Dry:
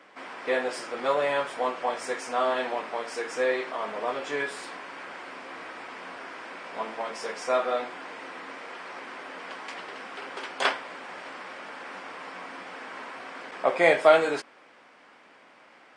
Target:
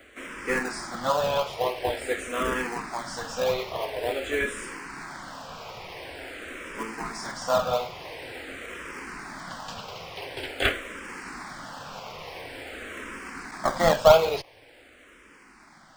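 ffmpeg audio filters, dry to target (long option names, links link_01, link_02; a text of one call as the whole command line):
ffmpeg -i in.wav -filter_complex "[0:a]acrossover=split=4100[link_01][link_02];[link_02]acompressor=threshold=-49dB:ratio=4:attack=1:release=60[link_03];[link_01][link_03]amix=inputs=2:normalize=0,crystalizer=i=2.5:c=0,asplit=2[link_04][link_05];[link_05]acrusher=samples=32:mix=1:aa=0.000001:lfo=1:lforange=19.2:lforate=3.3,volume=-6dB[link_06];[link_04][link_06]amix=inputs=2:normalize=0,asplit=2[link_07][link_08];[link_08]afreqshift=-0.47[link_09];[link_07][link_09]amix=inputs=2:normalize=1,volume=1.5dB" out.wav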